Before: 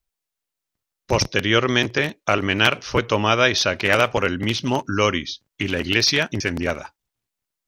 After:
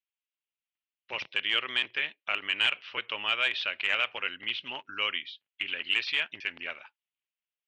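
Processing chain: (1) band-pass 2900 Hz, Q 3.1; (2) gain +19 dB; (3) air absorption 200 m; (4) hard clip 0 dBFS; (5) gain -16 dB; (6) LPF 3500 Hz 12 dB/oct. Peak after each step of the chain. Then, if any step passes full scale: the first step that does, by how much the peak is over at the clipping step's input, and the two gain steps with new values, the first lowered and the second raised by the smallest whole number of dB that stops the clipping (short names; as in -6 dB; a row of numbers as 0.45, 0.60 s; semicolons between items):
-7.5, +11.5, +8.5, 0.0, -16.0, -15.5 dBFS; step 2, 8.5 dB; step 2 +10 dB, step 5 -7 dB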